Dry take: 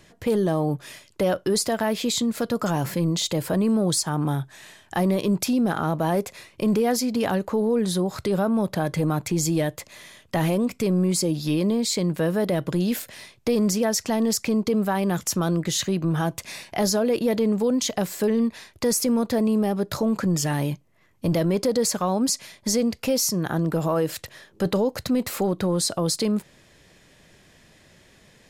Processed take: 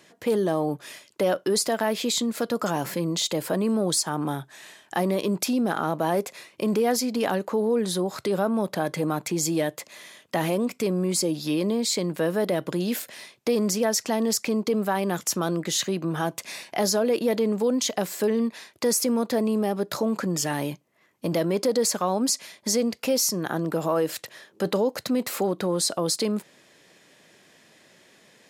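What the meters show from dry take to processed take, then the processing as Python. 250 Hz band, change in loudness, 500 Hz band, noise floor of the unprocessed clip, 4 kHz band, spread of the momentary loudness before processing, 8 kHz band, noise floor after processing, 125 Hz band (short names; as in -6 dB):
-3.5 dB, -1.5 dB, -0.5 dB, -56 dBFS, 0.0 dB, 6 LU, 0.0 dB, -59 dBFS, -6.5 dB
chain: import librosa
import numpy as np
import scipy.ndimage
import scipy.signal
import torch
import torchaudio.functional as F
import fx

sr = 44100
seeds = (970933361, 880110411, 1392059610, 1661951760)

y = scipy.signal.sosfilt(scipy.signal.butter(2, 230.0, 'highpass', fs=sr, output='sos'), x)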